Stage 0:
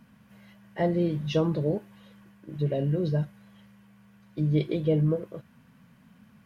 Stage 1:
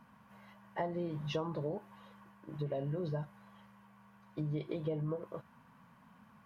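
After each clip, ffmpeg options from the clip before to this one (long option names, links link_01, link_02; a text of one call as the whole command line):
ffmpeg -i in.wav -af "equalizer=frequency=980:width=1.2:gain=14.5,acompressor=threshold=-26dB:ratio=6,volume=-7.5dB" out.wav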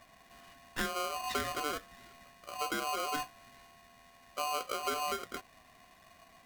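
ffmpeg -i in.wav -af "aeval=exprs='val(0)*sgn(sin(2*PI*890*n/s))':channel_layout=same,volume=1.5dB" out.wav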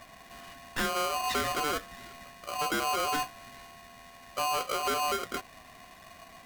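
ffmpeg -i in.wav -af "asoftclip=type=tanh:threshold=-33.5dB,volume=8.5dB" out.wav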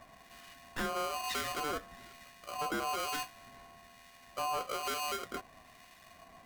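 ffmpeg -i in.wav -filter_complex "[0:a]acrossover=split=1500[link_01][link_02];[link_01]aeval=exprs='val(0)*(1-0.5/2+0.5/2*cos(2*PI*1.1*n/s))':channel_layout=same[link_03];[link_02]aeval=exprs='val(0)*(1-0.5/2-0.5/2*cos(2*PI*1.1*n/s))':channel_layout=same[link_04];[link_03][link_04]amix=inputs=2:normalize=0,volume=-3.5dB" out.wav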